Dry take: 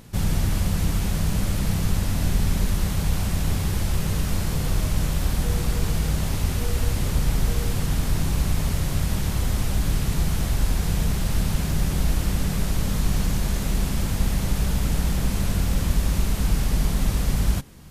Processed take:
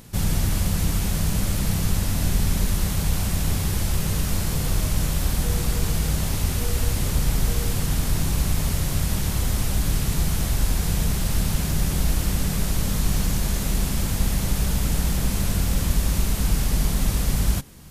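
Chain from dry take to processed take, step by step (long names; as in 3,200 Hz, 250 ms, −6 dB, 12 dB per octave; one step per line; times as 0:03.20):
high-shelf EQ 5,000 Hz +6 dB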